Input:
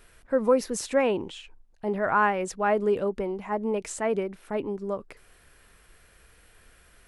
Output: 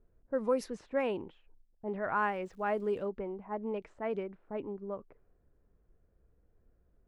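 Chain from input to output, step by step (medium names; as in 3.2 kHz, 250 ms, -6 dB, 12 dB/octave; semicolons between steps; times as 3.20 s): level-controlled noise filter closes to 420 Hz, open at -18.5 dBFS; 2.17–3.05 s: crackle 290 per s -51 dBFS; trim -8.5 dB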